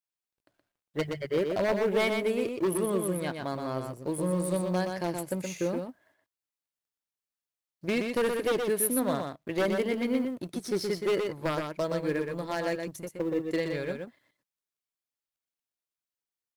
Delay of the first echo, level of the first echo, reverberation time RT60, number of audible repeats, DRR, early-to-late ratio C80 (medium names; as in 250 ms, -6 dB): 122 ms, -5.0 dB, no reverb, 1, no reverb, no reverb